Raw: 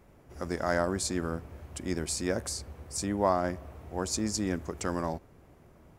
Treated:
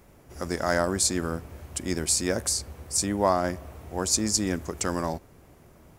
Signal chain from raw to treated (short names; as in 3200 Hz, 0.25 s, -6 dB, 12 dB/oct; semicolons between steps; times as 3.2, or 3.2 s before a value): high shelf 3900 Hz +8.5 dB; gain +3 dB